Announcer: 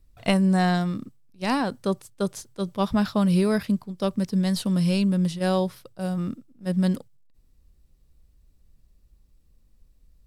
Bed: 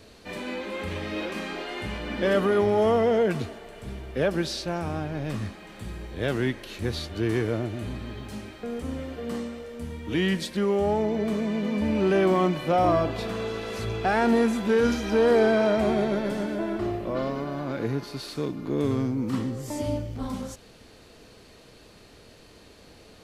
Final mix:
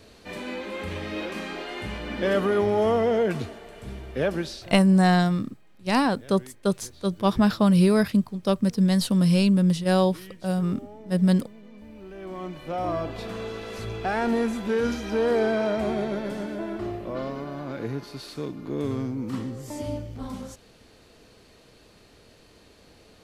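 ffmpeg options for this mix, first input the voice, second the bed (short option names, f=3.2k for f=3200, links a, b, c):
-filter_complex "[0:a]adelay=4450,volume=2.5dB[a];[1:a]volume=17dB,afade=t=out:st=4.32:d=0.41:silence=0.1,afade=t=in:st=12.16:d=1.19:silence=0.133352[b];[a][b]amix=inputs=2:normalize=0"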